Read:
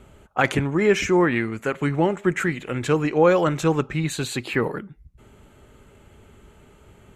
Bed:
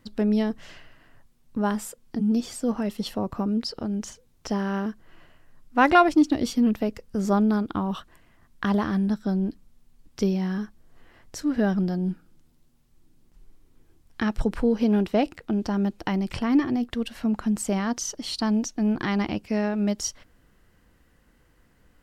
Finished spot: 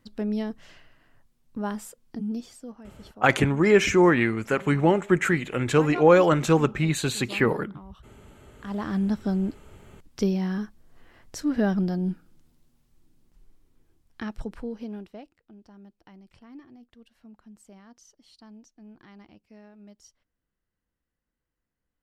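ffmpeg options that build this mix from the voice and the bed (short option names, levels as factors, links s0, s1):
-filter_complex "[0:a]adelay=2850,volume=1.06[s0];[1:a]volume=4.47,afade=t=out:st=2.11:d=0.66:silence=0.211349,afade=t=in:st=8.61:d=0.42:silence=0.11885,afade=t=out:st=12.42:d=2.87:silence=0.0595662[s1];[s0][s1]amix=inputs=2:normalize=0"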